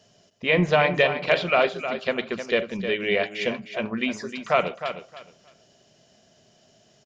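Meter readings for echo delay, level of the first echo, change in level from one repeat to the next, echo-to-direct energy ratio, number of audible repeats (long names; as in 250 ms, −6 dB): 310 ms, −9.5 dB, −14.0 dB, −9.5 dB, 2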